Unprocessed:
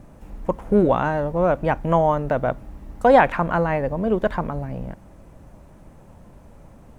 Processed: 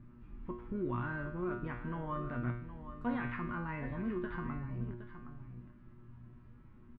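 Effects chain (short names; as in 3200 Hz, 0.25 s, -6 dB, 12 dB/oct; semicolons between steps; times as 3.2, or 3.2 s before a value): band shelf 630 Hz -16 dB 1.1 oct; limiter -18.5 dBFS, peak gain reduction 11 dB; air absorption 410 m; resonator 120 Hz, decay 0.6 s, harmonics all, mix 90%; echo 0.767 s -11.5 dB; gain +4 dB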